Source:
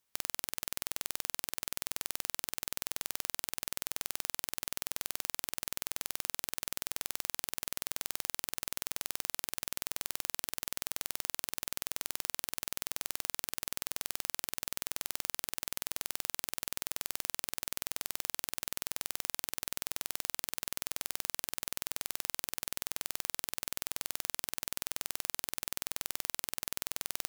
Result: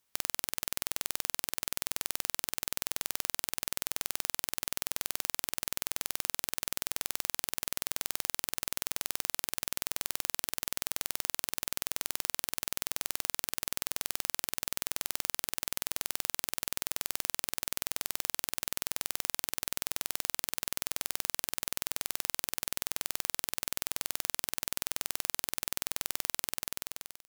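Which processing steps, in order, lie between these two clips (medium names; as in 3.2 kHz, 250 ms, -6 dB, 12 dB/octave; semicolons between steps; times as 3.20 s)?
fade out at the end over 0.80 s; trim +3 dB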